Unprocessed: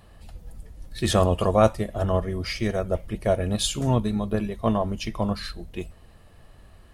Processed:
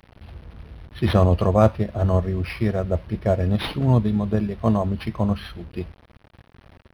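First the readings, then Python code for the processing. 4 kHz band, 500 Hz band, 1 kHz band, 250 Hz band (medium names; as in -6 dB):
-4.5 dB, +1.0 dB, 0.0 dB, +4.0 dB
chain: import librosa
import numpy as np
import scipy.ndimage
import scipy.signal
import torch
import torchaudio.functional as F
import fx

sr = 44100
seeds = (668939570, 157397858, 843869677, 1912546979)

y = scipy.signal.sosfilt(scipy.signal.butter(4, 58.0, 'highpass', fs=sr, output='sos'), x)
y = fx.quant_dither(y, sr, seeds[0], bits=8, dither='none')
y = fx.low_shelf(y, sr, hz=210.0, db=8.0)
y = np.interp(np.arange(len(y)), np.arange(len(y))[::6], y[::6])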